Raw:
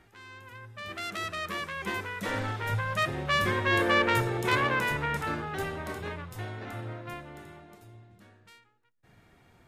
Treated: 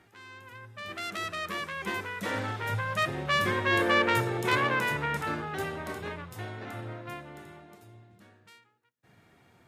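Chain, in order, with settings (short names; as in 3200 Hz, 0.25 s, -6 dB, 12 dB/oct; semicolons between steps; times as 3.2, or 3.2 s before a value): HPF 96 Hz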